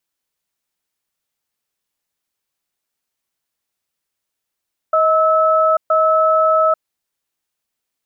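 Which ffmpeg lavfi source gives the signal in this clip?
ffmpeg -f lavfi -i "aevalsrc='0.211*(sin(2*PI*633*t)+sin(2*PI*1300*t))*clip(min(mod(t,0.97),0.84-mod(t,0.97))/0.005,0,1)':duration=1.93:sample_rate=44100" out.wav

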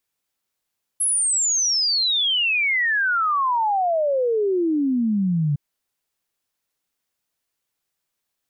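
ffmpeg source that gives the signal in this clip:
ffmpeg -f lavfi -i "aevalsrc='0.133*clip(min(t,4.56-t)/0.01,0,1)*sin(2*PI*11000*4.56/log(140/11000)*(exp(log(140/11000)*t/4.56)-1))':duration=4.56:sample_rate=44100" out.wav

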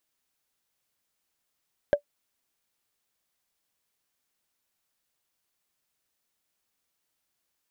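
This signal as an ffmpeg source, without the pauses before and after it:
ffmpeg -f lavfi -i "aevalsrc='0.266*pow(10,-3*t/0.09)*sin(2*PI*580*t)+0.0668*pow(10,-3*t/0.027)*sin(2*PI*1599.1*t)+0.0168*pow(10,-3*t/0.012)*sin(2*PI*3134.3*t)+0.00422*pow(10,-3*t/0.007)*sin(2*PI*5181.1*t)+0.00106*pow(10,-3*t/0.004)*sin(2*PI*7737.2*t)':duration=0.45:sample_rate=44100" out.wav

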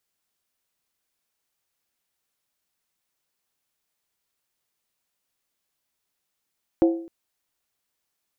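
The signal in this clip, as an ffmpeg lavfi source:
ffmpeg -f lavfi -i "aevalsrc='0.251*pow(10,-3*t/0.53)*sin(2*PI*333*t)+0.1*pow(10,-3*t/0.42)*sin(2*PI*530.8*t)+0.0398*pow(10,-3*t/0.363)*sin(2*PI*711.3*t)+0.0158*pow(10,-3*t/0.35)*sin(2*PI*764.6*t)+0.00631*pow(10,-3*t/0.325)*sin(2*PI*883.4*t)':duration=0.26:sample_rate=44100" out.wav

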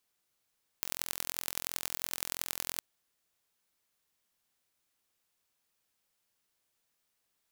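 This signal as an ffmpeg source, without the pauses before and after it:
ffmpeg -f lavfi -i "aevalsrc='0.596*eq(mod(n,1028),0)*(0.5+0.5*eq(mod(n,4112),0))':duration=1.96:sample_rate=44100" out.wav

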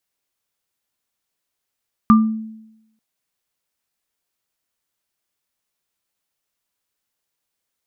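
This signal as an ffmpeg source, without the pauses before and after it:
ffmpeg -f lavfi -i "aevalsrc='0.501*pow(10,-3*t/0.89)*sin(2*PI*220*t)+0.355*pow(10,-3*t/0.26)*sin(2*PI*1190*t)':duration=0.89:sample_rate=44100" out.wav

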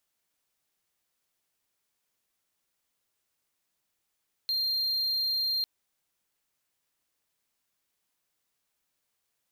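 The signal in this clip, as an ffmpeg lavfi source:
ffmpeg -f lavfi -i "aevalsrc='0.0631*(1-4*abs(mod(4190*t+0.25,1)-0.5))':duration=1.15:sample_rate=44100" out.wav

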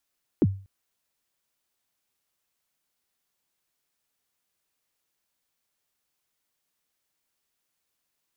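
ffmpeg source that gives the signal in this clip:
ffmpeg -f lavfi -i "aevalsrc='0.224*pow(10,-3*t/0.38)*sin(2*PI*(400*0.04/log(97/400)*(exp(log(97/400)*min(t,0.04)/0.04)-1)+97*max(t-0.04,0)))':duration=0.24:sample_rate=44100" out.wav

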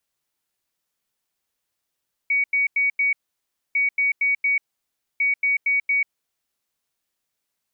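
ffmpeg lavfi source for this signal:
ffmpeg -f lavfi -i "aevalsrc='0.141*sin(2*PI*2250*t)*clip(min(mod(mod(t,1.45),0.23),0.14-mod(mod(t,1.45),0.23))/0.005,0,1)*lt(mod(t,1.45),0.92)':duration=4.35:sample_rate=44100" out.wav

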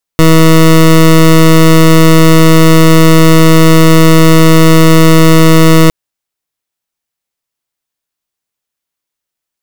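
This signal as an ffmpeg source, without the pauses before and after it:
ffmpeg -f lavfi -i "aevalsrc='0.708*(2*lt(mod(161*t,1),0.2)-1)':duration=5.71:sample_rate=44100" out.wav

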